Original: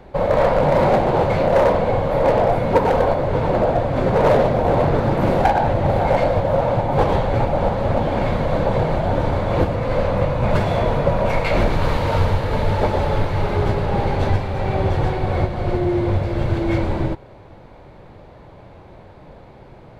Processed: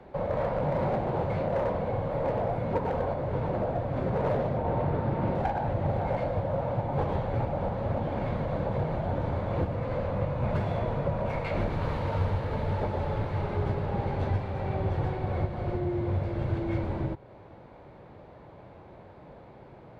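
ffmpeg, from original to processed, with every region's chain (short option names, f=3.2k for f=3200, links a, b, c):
-filter_complex "[0:a]asettb=1/sr,asplit=3[a][b][c];[a]atrim=end=4.574[d];[b]atrim=start=4.57:end=5.35,asetpts=PTS-STARTPTS,afade=t=in:d=0.004:c=qsin,afade=t=out:st=0.776:d=0.004:c=qsin,lowpass=4.6k,aeval=exprs='val(0)+0.0501*sin(2*PI*910*n/s)':c=same[e];[c]atrim=start=5.346[f];[d][e]acrossfade=d=0.004:c1=hsin:c2=qsin[g];[g][f]acrossfade=d=0.004:c1=qsin:c2=hsin,highpass=f=97:p=1,highshelf=f=4k:g=-11,acrossover=split=170[h][i];[i]acompressor=threshold=-36dB:ratio=1.5[j];[h][j]amix=inputs=2:normalize=0,volume=-5dB"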